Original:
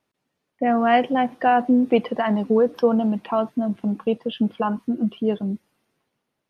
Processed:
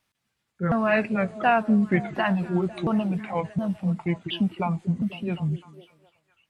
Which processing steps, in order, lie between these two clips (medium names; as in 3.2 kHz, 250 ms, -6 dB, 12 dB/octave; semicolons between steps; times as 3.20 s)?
sawtooth pitch modulation -6.5 st, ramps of 717 ms; peaking EQ 400 Hz -14 dB 2.4 oct; repeats whose band climbs or falls 251 ms, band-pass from 310 Hz, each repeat 0.7 oct, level -11 dB; trim +6 dB